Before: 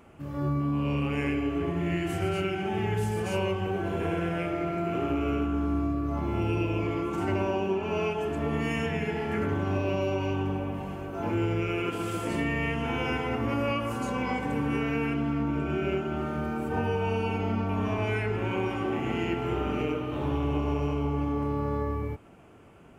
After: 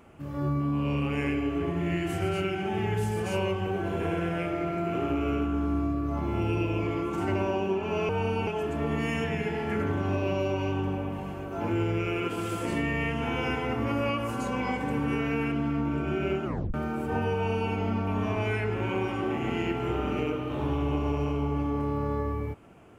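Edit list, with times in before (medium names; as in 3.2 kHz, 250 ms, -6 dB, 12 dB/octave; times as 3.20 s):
16.07 s: tape stop 0.29 s
16.96–17.34 s: copy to 8.09 s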